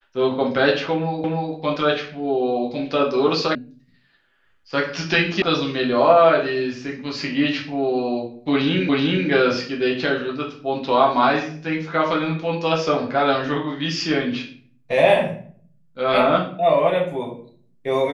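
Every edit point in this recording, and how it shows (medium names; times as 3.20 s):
1.24 s: repeat of the last 0.3 s
3.55 s: sound stops dead
5.42 s: sound stops dead
8.89 s: repeat of the last 0.38 s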